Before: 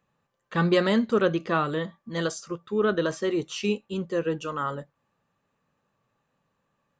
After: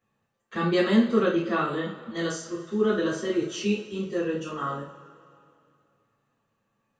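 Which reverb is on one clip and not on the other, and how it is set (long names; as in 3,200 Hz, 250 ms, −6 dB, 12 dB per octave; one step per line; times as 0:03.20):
coupled-rooms reverb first 0.37 s, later 2.5 s, from −20 dB, DRR −7.5 dB
level −9 dB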